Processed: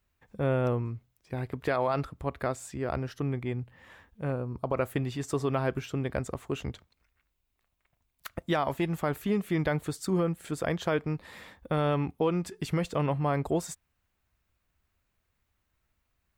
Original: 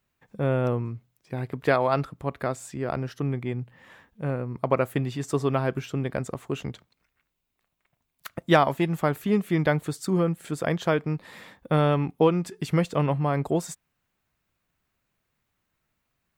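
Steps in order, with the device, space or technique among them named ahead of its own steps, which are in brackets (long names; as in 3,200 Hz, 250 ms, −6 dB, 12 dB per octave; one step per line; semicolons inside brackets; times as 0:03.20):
car stereo with a boomy subwoofer (low shelf with overshoot 100 Hz +8 dB, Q 1.5; brickwall limiter −15.5 dBFS, peak gain reduction 9 dB)
0:04.32–0:04.75: parametric band 2,000 Hz −14.5 dB 0.46 octaves
level −2 dB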